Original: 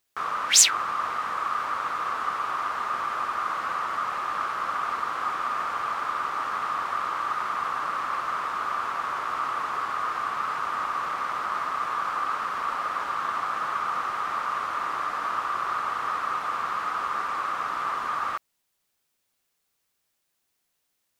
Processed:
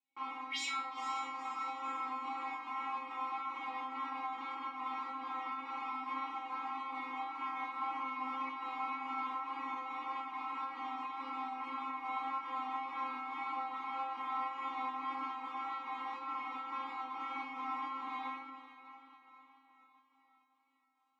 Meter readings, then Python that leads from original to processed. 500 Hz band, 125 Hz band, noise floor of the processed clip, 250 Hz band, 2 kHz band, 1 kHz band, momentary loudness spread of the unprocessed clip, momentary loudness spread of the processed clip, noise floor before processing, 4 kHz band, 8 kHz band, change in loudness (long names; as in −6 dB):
−16.5 dB, can't be measured, −72 dBFS, −1.0 dB, −13.0 dB, −11.0 dB, 1 LU, 3 LU, −76 dBFS, −16.5 dB, below −30 dB, −12.5 dB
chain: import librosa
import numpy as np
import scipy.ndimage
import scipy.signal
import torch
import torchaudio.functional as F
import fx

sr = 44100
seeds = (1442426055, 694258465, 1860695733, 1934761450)

p1 = fx.rider(x, sr, range_db=3, speed_s=0.5)
p2 = p1 + fx.echo_diffused(p1, sr, ms=478, feedback_pct=49, wet_db=-13, dry=0)
p3 = 10.0 ** (-17.0 / 20.0) * np.tanh(p2 / 10.0 ** (-17.0 / 20.0))
p4 = fx.vowel_filter(p3, sr, vowel='u')
p5 = fx.high_shelf(p4, sr, hz=9100.0, db=-7.5)
p6 = fx.room_shoebox(p5, sr, seeds[0], volume_m3=76.0, walls='mixed', distance_m=0.76)
p7 = fx.volume_shaper(p6, sr, bpm=141, per_beat=1, depth_db=-13, release_ms=113.0, shape='slow start')
p8 = p6 + (p7 * librosa.db_to_amplitude(1.5))
p9 = scipy.signal.sosfilt(scipy.signal.butter(2, 180.0, 'highpass', fs=sr, output='sos'), p8)
p10 = fx.low_shelf(p9, sr, hz=380.0, db=-3.5)
p11 = fx.stiff_resonator(p10, sr, f0_hz=260.0, decay_s=0.69, stiffness=0.002)
p12 = fx.vibrato(p11, sr, rate_hz=1.8, depth_cents=17.0)
y = p12 * librosa.db_to_amplitude(18.0)